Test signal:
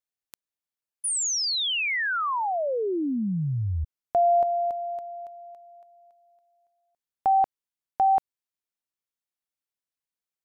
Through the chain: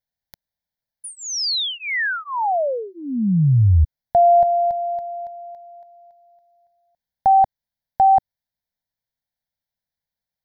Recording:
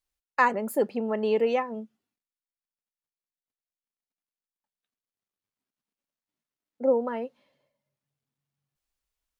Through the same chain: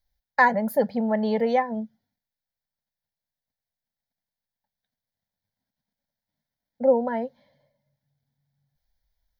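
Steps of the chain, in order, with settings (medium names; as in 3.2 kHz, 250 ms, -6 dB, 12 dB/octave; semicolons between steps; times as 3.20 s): bass shelf 460 Hz +10 dB; static phaser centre 1.8 kHz, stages 8; dynamic bell 340 Hz, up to -6 dB, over -40 dBFS, Q 2; trim +5 dB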